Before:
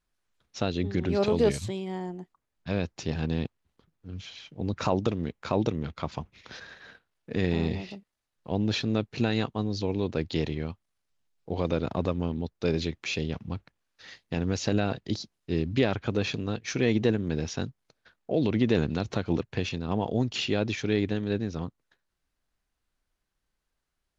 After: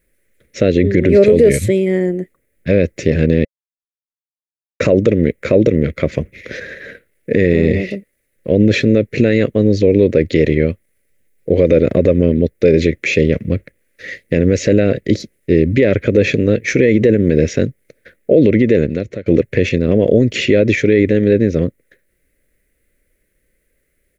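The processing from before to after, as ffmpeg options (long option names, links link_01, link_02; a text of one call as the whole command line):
ffmpeg -i in.wav -filter_complex "[0:a]asplit=4[link_01][link_02][link_03][link_04];[link_01]atrim=end=3.45,asetpts=PTS-STARTPTS,afade=type=out:start_time=3.446:duration=0.004:curve=hsin[link_05];[link_02]atrim=start=3.45:end=4.8,asetpts=PTS-STARTPTS,volume=0[link_06];[link_03]atrim=start=4.8:end=19.26,asetpts=PTS-STARTPTS,afade=type=in:duration=0.004:curve=hsin,afade=type=out:start_time=13.53:duration=0.93:silence=0.0794328[link_07];[link_04]atrim=start=19.26,asetpts=PTS-STARTPTS,afade=type=in:duration=0.004:curve=hsin:silence=0.0794328[link_08];[link_05][link_06][link_07][link_08]concat=n=4:v=0:a=1,firequalizer=gain_entry='entry(160,0);entry(550,9);entry(810,-23);entry(2000,8);entry(2900,-7);entry(4800,-11);entry(10000,6)':delay=0.05:min_phase=1,alimiter=level_in=17dB:limit=-1dB:release=50:level=0:latency=1,volume=-1dB" out.wav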